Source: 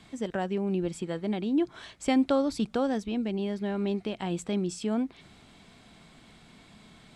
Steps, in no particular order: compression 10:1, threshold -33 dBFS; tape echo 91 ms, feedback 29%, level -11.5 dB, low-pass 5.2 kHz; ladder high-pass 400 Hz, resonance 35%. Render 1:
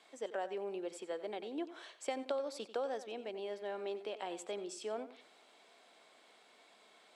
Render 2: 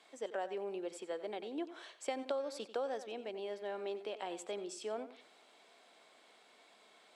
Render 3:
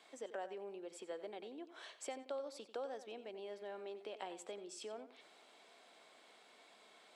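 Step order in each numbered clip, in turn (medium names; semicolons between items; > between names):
ladder high-pass > compression > tape echo; ladder high-pass > tape echo > compression; compression > ladder high-pass > tape echo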